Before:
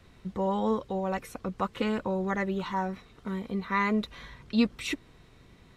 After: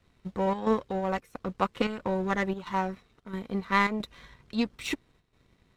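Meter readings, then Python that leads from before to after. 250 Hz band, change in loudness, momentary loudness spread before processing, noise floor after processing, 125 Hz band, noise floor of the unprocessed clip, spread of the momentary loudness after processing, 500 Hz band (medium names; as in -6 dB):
-1.5 dB, +0.5 dB, 11 LU, -68 dBFS, -0.5 dB, -57 dBFS, 13 LU, +0.5 dB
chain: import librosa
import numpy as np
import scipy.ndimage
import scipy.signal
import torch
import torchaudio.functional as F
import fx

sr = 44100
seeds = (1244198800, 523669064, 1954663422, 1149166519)

y = fx.power_curve(x, sr, exponent=1.4)
y = fx.chopper(y, sr, hz=1.5, depth_pct=60, duty_pct=80)
y = y * librosa.db_to_amplitude(6.0)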